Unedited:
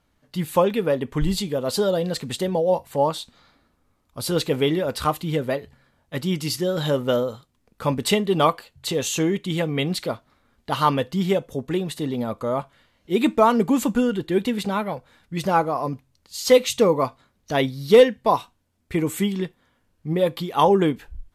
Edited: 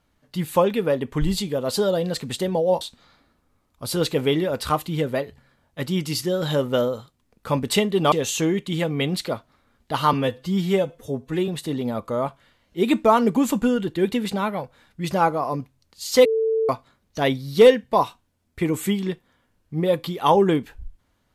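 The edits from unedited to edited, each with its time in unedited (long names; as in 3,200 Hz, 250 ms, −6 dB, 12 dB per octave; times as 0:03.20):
0:02.81–0:03.16: remove
0:08.47–0:08.90: remove
0:10.91–0:11.81: time-stretch 1.5×
0:16.58–0:17.02: beep over 445 Hz −18 dBFS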